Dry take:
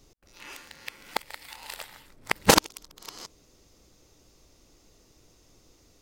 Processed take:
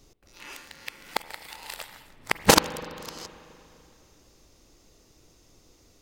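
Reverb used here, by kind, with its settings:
spring reverb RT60 2.8 s, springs 36/42/48 ms, chirp 65 ms, DRR 14.5 dB
level +1 dB

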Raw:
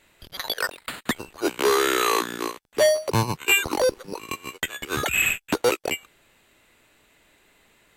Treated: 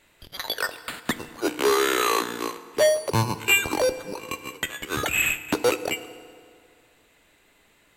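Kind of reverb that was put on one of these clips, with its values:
feedback delay network reverb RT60 2.2 s, low-frequency decay 0.95×, high-frequency decay 0.7×, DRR 12 dB
level −1 dB

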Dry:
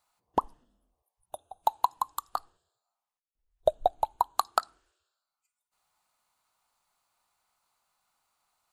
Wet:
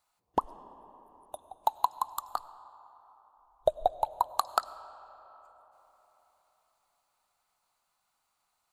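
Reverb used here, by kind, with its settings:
comb and all-pass reverb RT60 4.2 s, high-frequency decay 0.5×, pre-delay 60 ms, DRR 16 dB
level −1.5 dB

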